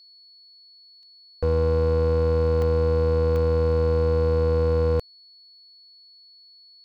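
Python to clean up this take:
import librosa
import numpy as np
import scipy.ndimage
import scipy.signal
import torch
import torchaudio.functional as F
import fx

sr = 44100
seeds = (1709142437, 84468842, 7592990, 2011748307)

y = fx.fix_declip(x, sr, threshold_db=-17.0)
y = fx.notch(y, sr, hz=4400.0, q=30.0)
y = fx.fix_interpolate(y, sr, at_s=(1.03, 2.62, 3.36), length_ms=1.0)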